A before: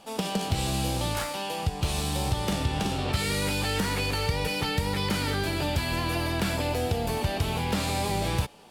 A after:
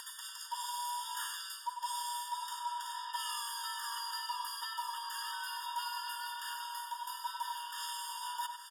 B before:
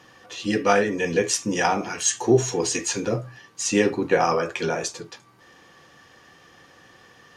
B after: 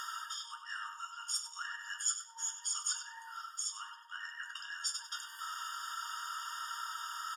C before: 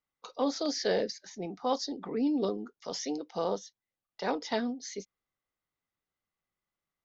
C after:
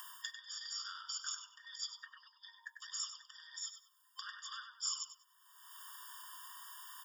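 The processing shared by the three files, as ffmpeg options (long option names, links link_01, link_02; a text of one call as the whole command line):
ffmpeg -i in.wav -filter_complex "[0:a]afftfilt=real='real(if(between(b,1,1008),(2*floor((b-1)/48)+1)*48-b,b),0)':imag='imag(if(between(b,1,1008),(2*floor((b-1)/48)+1)*48-b,b),0)*if(between(b,1,1008),-1,1)':win_size=2048:overlap=0.75,acompressor=mode=upward:threshold=-27dB:ratio=2.5,bandreject=frequency=60:width_type=h:width=6,bandreject=frequency=120:width_type=h:width=6,bandreject=frequency=180:width_type=h:width=6,bandreject=frequency=240:width_type=h:width=6,bandreject=frequency=300:width_type=h:width=6,bandreject=frequency=360:width_type=h:width=6,bandreject=frequency=420:width_type=h:width=6,bandreject=frequency=480:width_type=h:width=6,bandreject=frequency=540:width_type=h:width=6,areverse,acompressor=threshold=-38dB:ratio=5,areverse,highshelf=frequency=6600:gain=8.5,bandreject=frequency=2600:width=8.8,asplit=2[link_01][link_02];[link_02]adelay=97,lowpass=frequency=3700:poles=1,volume=-6dB,asplit=2[link_03][link_04];[link_04]adelay=97,lowpass=frequency=3700:poles=1,volume=0.35,asplit=2[link_05][link_06];[link_06]adelay=97,lowpass=frequency=3700:poles=1,volume=0.35,asplit=2[link_07][link_08];[link_08]adelay=97,lowpass=frequency=3700:poles=1,volume=0.35[link_09];[link_03][link_05][link_07][link_09]amix=inputs=4:normalize=0[link_10];[link_01][link_10]amix=inputs=2:normalize=0,afftfilt=real='re*eq(mod(floor(b*sr/1024/930),2),1)':imag='im*eq(mod(floor(b*sr/1024/930),2),1)':win_size=1024:overlap=0.75,volume=2.5dB" out.wav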